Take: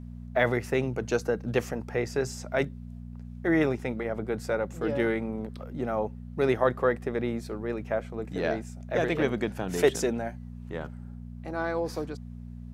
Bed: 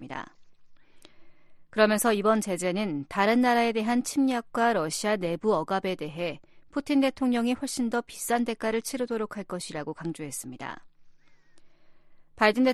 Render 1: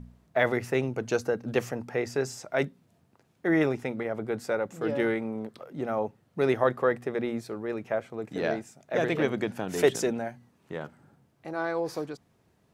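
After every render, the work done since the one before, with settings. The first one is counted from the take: de-hum 60 Hz, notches 4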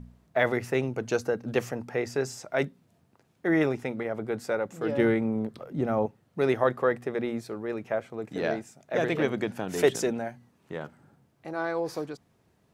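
4.98–6.06 low shelf 270 Hz +10.5 dB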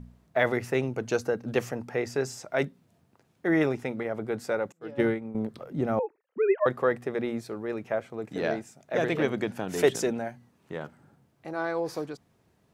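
4.72–5.35 upward expander 2.5:1, over -40 dBFS; 5.99–6.66 sine-wave speech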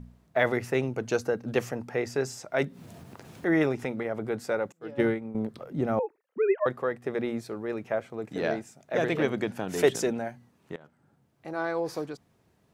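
2.62–4.3 upward compressor, threshold -29 dBFS; 6.39–7.04 fade out, to -7 dB; 10.76–11.53 fade in, from -20.5 dB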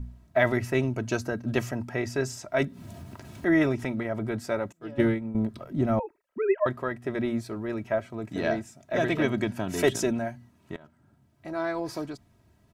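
resonant low shelf 230 Hz +7.5 dB, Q 1.5; comb 3.1 ms, depth 66%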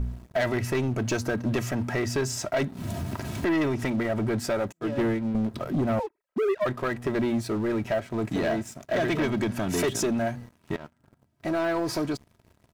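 compressor 2.5:1, threshold -34 dBFS, peak gain reduction 11.5 dB; sample leveller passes 3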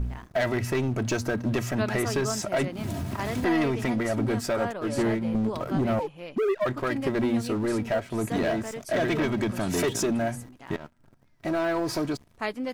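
add bed -9.5 dB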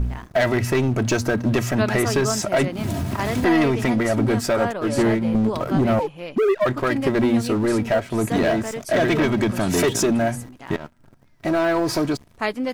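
gain +6.5 dB

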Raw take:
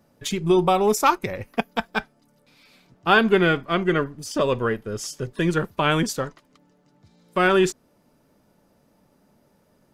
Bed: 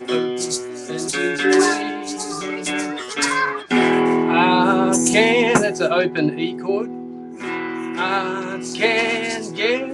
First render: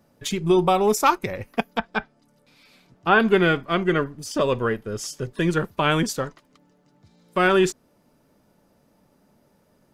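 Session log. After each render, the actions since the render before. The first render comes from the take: 1.72–3.2 treble ducked by the level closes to 2400 Hz, closed at -20 dBFS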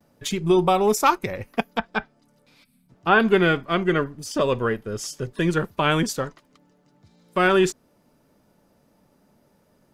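2.64–2.9 spectral gain 260–7900 Hz -20 dB; gate with hold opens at -55 dBFS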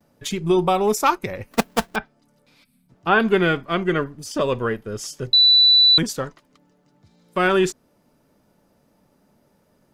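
1.51–1.96 half-waves squared off; 5.33–5.98 bleep 3970 Hz -10 dBFS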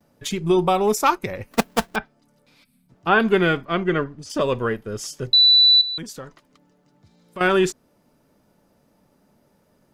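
3.65–4.3 air absorption 79 m; 5.81–7.41 compressor 2:1, threshold -39 dBFS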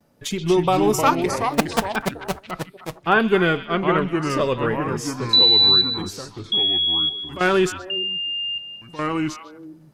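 delay with a stepping band-pass 0.127 s, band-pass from 3300 Hz, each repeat -1.4 oct, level -9 dB; echoes that change speed 0.18 s, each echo -3 st, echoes 2, each echo -6 dB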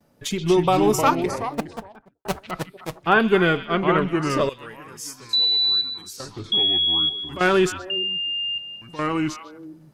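0.86–2.25 studio fade out; 4.49–6.2 pre-emphasis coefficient 0.9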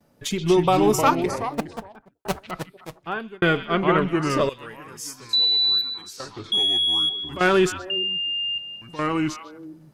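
2.31–3.42 fade out; 5.78–7.17 overdrive pedal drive 8 dB, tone 3000 Hz, clips at -12.5 dBFS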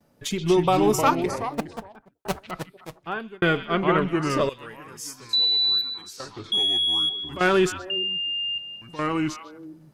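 gain -1.5 dB

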